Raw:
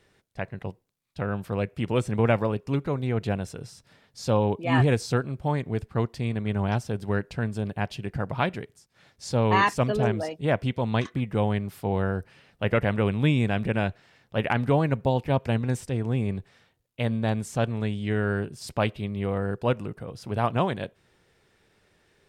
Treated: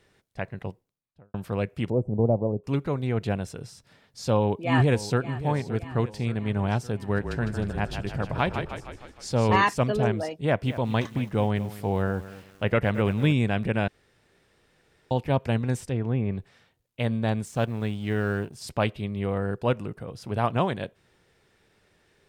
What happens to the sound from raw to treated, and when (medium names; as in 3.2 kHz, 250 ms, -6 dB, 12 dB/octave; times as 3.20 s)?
0.65–1.34 s: studio fade out
1.90–2.64 s: inverse Chebyshev low-pass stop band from 1.5 kHz
4.36–5.29 s: echo throw 570 ms, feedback 60%, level -14 dB
6.97–9.56 s: frequency-shifting echo 155 ms, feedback 56%, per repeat -30 Hz, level -7 dB
10.39–13.33 s: bit-crushed delay 222 ms, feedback 35%, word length 7-bit, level -15 dB
13.88–15.11 s: room tone
15.83–16.39 s: low-pass that closes with the level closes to 2.3 kHz, closed at -21.5 dBFS
17.45–18.55 s: companding laws mixed up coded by A